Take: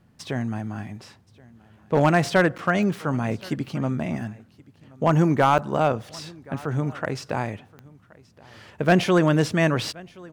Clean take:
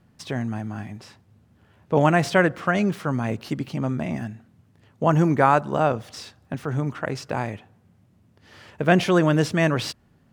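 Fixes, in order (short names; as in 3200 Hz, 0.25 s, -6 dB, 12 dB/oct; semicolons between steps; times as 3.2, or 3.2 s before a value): clip repair -10 dBFS; de-click; interpolate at 2.58/5.58, 7.2 ms; inverse comb 1.075 s -24 dB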